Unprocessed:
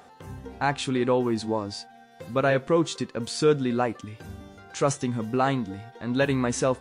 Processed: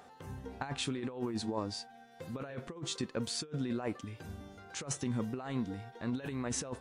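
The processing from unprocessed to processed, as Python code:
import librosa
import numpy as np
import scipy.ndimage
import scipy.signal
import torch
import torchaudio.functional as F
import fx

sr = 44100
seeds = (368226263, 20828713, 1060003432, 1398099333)

y = fx.over_compress(x, sr, threshold_db=-27.0, ratio=-0.5)
y = y * librosa.db_to_amplitude(-8.5)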